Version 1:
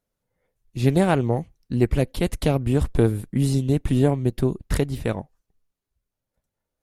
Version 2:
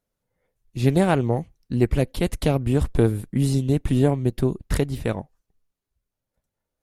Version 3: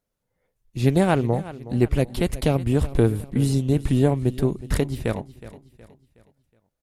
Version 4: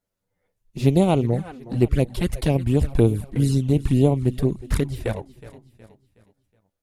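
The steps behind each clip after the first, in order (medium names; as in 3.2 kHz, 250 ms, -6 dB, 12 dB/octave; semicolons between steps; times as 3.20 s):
no audible change
feedback delay 368 ms, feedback 41%, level -16.5 dB
touch-sensitive flanger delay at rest 10.5 ms, full sweep at -14.5 dBFS; trim +2 dB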